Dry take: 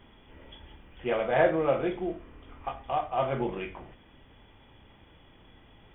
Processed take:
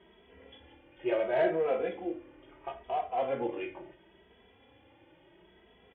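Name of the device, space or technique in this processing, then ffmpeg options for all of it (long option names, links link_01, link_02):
barber-pole flanger into a guitar amplifier: -filter_complex "[0:a]asplit=2[link_01][link_02];[link_02]adelay=2.7,afreqshift=0.73[link_03];[link_01][link_03]amix=inputs=2:normalize=1,asoftclip=type=tanh:threshold=-21dB,highpass=88,equalizer=frequency=92:width_type=q:width=4:gain=-7,equalizer=frequency=140:width_type=q:width=4:gain=-9,equalizer=frequency=230:width_type=q:width=4:gain=-5,equalizer=frequency=360:width_type=q:width=4:gain=6,equalizer=frequency=530:width_type=q:width=4:gain=4,equalizer=frequency=1200:width_type=q:width=4:gain=-6,lowpass=frequency=3400:width=0.5412,lowpass=frequency=3400:width=1.3066"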